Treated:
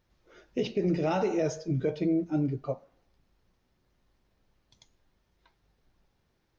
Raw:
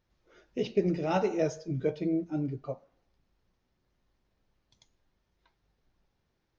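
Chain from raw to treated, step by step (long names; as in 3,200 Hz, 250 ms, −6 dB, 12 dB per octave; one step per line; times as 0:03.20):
brickwall limiter −23 dBFS, peak gain reduction 8 dB
level +4 dB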